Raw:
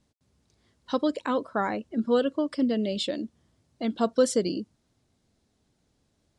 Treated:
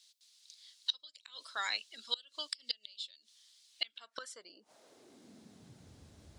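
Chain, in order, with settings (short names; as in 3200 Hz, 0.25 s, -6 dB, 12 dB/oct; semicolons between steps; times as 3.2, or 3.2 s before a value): high-pass sweep 3900 Hz -> 63 Hz, 3.66–6.09; flipped gate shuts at -30 dBFS, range -28 dB; gain +11 dB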